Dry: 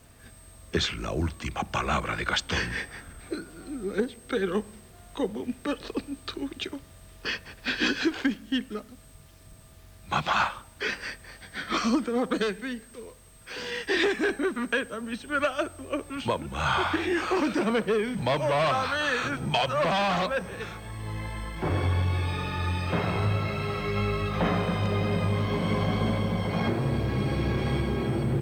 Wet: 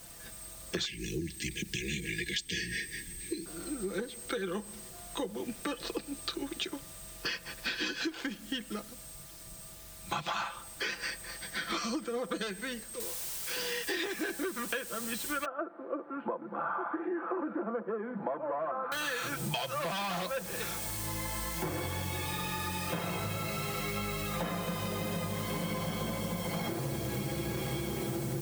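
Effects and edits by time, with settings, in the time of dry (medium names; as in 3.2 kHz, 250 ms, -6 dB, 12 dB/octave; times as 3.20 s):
0.85–3.46 s: brick-wall FIR band-stop 470–1600 Hz
13.00 s: noise floor step -61 dB -46 dB
15.45–18.92 s: elliptic band-pass 220–1400 Hz, stop band 60 dB
whole clip: tone controls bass -3 dB, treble +7 dB; comb 5.9 ms, depth 55%; compression, threshold -32 dBFS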